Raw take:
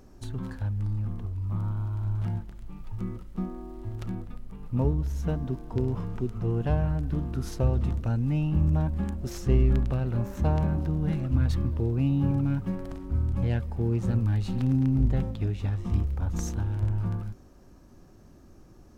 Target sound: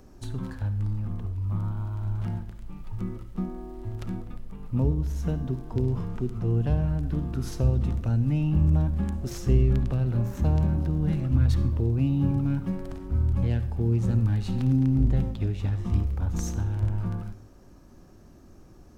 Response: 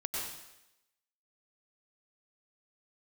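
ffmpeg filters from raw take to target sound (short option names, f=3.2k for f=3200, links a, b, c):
-filter_complex "[0:a]acrossover=split=410|3000[a][b][c];[b]acompressor=threshold=-45dB:ratio=2[d];[a][d][c]amix=inputs=3:normalize=0,asplit=2[e][f];[1:a]atrim=start_sample=2205,asetrate=79380,aresample=44100[g];[f][g]afir=irnorm=-1:irlink=0,volume=-8.5dB[h];[e][h]amix=inputs=2:normalize=0"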